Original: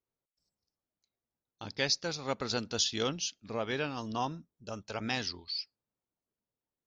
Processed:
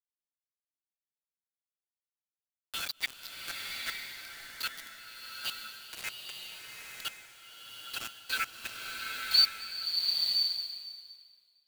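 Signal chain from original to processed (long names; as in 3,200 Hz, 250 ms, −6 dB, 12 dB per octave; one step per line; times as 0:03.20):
spectral magnitudes quantised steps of 15 dB
parametric band 3,500 Hz +4 dB 2.2 octaves
automatic gain control gain up to 13.5 dB
gate with flip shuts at −12 dBFS, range −26 dB
brick-wall band-pass 1,300–4,800 Hz
phase-vocoder stretch with locked phases 1.7×
bit reduction 6 bits
slow-attack reverb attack 950 ms, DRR 1 dB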